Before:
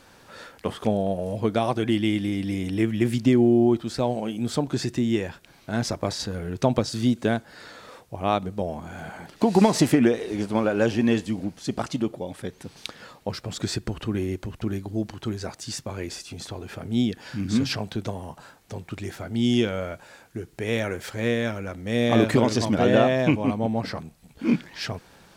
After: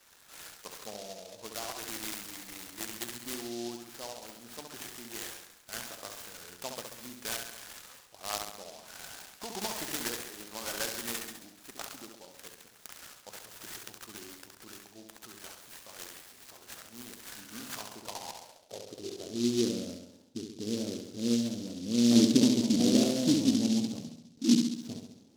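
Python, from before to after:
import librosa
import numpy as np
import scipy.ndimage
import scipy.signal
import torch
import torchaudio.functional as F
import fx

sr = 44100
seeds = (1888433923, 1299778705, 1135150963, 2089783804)

y = fx.room_flutter(x, sr, wall_m=11.6, rt60_s=0.81)
y = fx.filter_sweep_bandpass(y, sr, from_hz=1800.0, to_hz=260.0, start_s=17.3, end_s=19.83, q=3.2)
y = fx.noise_mod_delay(y, sr, seeds[0], noise_hz=4600.0, depth_ms=0.15)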